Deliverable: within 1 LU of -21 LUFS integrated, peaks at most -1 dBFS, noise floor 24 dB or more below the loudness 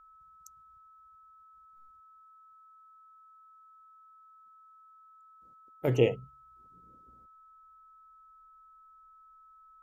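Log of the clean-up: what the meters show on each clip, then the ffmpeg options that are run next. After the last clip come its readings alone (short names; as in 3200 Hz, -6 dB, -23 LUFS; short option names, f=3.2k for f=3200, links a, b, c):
steady tone 1300 Hz; tone level -55 dBFS; loudness -29.0 LUFS; peak -10.0 dBFS; loudness target -21.0 LUFS
-> -af "bandreject=f=1.3k:w=30"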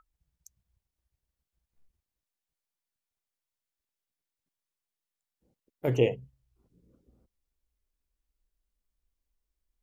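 steady tone none; loudness -28.5 LUFS; peak -10.5 dBFS; loudness target -21.0 LUFS
-> -af "volume=7.5dB"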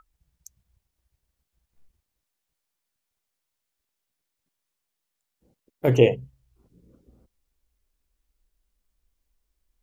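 loudness -21.5 LUFS; peak -3.0 dBFS; noise floor -82 dBFS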